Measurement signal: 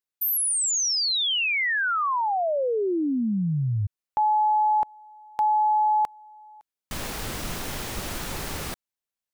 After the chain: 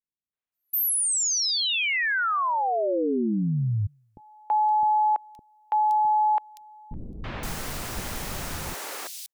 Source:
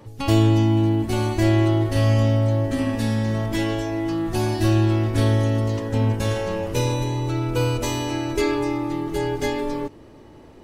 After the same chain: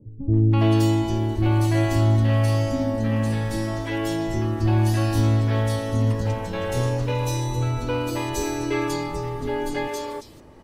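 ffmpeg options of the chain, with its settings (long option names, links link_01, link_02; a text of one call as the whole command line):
ffmpeg -i in.wav -filter_complex "[0:a]acrossover=split=360|3400[link_01][link_02][link_03];[link_02]adelay=330[link_04];[link_03]adelay=520[link_05];[link_01][link_04][link_05]amix=inputs=3:normalize=0" out.wav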